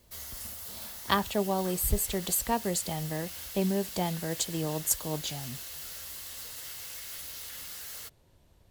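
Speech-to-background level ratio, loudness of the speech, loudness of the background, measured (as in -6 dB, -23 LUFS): 8.5 dB, -30.5 LUFS, -39.0 LUFS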